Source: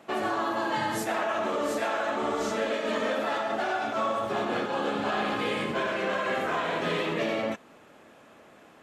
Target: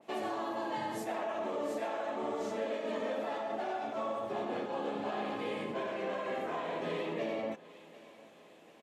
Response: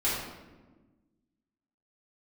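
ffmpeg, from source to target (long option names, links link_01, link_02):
-filter_complex "[0:a]highpass=frequency=210:poles=1,equalizer=frequency=1400:width_type=o:width=0.66:gain=-9.5,asplit=2[link_01][link_02];[link_02]aecho=0:1:750|1500|2250|3000:0.0891|0.0446|0.0223|0.0111[link_03];[link_01][link_03]amix=inputs=2:normalize=0,adynamicequalizer=threshold=0.00355:dfrequency=2200:dqfactor=0.7:tfrequency=2200:tqfactor=0.7:attack=5:release=100:ratio=0.375:range=4:mode=cutabove:tftype=highshelf,volume=-5dB"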